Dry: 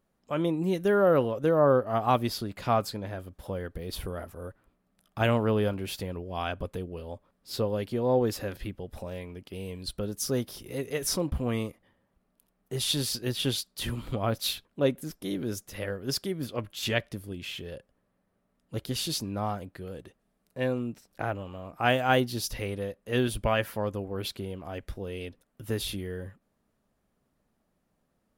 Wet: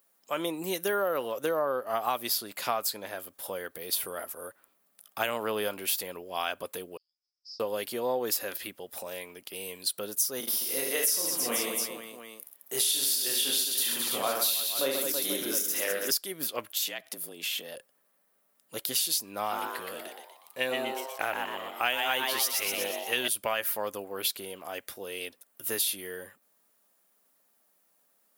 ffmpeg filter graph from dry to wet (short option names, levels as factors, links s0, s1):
-filter_complex "[0:a]asettb=1/sr,asplit=3[s0][s1][s2];[s0]atrim=end=6.974[s3];[s1]atrim=start=6.97:end=7.6,asetpts=PTS-STARTPTS,afade=t=in:d=0.004:c=qsin,afade=t=out:st=0.626:d=0.004:c=qsin,acompressor=threshold=0.00316:ratio=3:attack=3.2:release=140:knee=1:detection=peak,asuperpass=centerf=5200:order=4:qfactor=6.4[s4];[s2]atrim=start=7.596[s5];[s3][s4]acrossfade=d=0.004:c1=hsin:c2=qsin[s6];[s6][s5]acrossfade=d=0.004:c1=qsin:c2=hsin,asettb=1/sr,asplit=3[s7][s8][s9];[s7]atrim=end=10.404[s10];[s8]atrim=start=10.4:end=16.11,asetpts=PTS-STARTPTS,afade=t=in:d=0.004:c=qsin,afade=t=out:st=5.706:d=0.004:c=qsin,highpass=f=150:w=0.5412,highpass=f=150:w=1.3066,aecho=1:1:30|72|130.8|213.1|328.4|489.7|715.6:0.794|0.631|0.501|0.398|0.316|0.251|0.2,atrim=end_sample=251811[s11];[s9]atrim=start=16.106[s12];[s10][s11]acrossfade=d=0.004:c1=hsin:c2=qsin[s13];[s13][s12]acrossfade=d=0.004:c1=qsin:c2=hsin,asettb=1/sr,asplit=3[s14][s15][s16];[s14]atrim=end=16.704[s17];[s15]atrim=start=16.7:end=17.75,asetpts=PTS-STARTPTS,afade=t=in:d=0.004:c=qsin,afade=t=out:st=1.046:d=0.004:c=qsin,afreqshift=73,acompressor=threshold=0.0178:ratio=10:attack=3.2:release=140:knee=1:detection=peak[s18];[s16]atrim=start=17.746[s19];[s17][s18]acrossfade=d=0.004:c1=hsin:c2=qsin[s20];[s20][s19]acrossfade=d=0.004:c1=qsin:c2=hsin,asettb=1/sr,asplit=3[s21][s22][s23];[s21]atrim=end=19.394[s24];[s22]atrim=start=19.39:end=23.28,asetpts=PTS-STARTPTS,afade=t=in:d=0.004:c=qsin,afade=t=out:st=3.886:d=0.004:c=qsin,equalizer=f=2700:t=o:w=1:g=6.5,asplit=7[s25][s26][s27][s28][s29][s30][s31];[s26]adelay=121,afreqshift=140,volume=0.562[s32];[s27]adelay=242,afreqshift=280,volume=0.269[s33];[s28]adelay=363,afreqshift=420,volume=0.129[s34];[s29]adelay=484,afreqshift=560,volume=0.0624[s35];[s30]adelay=605,afreqshift=700,volume=0.0299[s36];[s31]adelay=726,afreqshift=840,volume=0.0143[s37];[s25][s32][s33][s34][s35][s36][s37]amix=inputs=7:normalize=0,atrim=end_sample=171549[s38];[s23]atrim=start=23.276[s39];[s24][s38]acrossfade=d=0.004:c1=hsin:c2=qsin[s40];[s40][s39]acrossfade=d=0.004:c1=qsin:c2=hsin,highpass=f=580:p=1,aemphasis=mode=production:type=bsi,acompressor=threshold=0.0355:ratio=6,volume=1.58"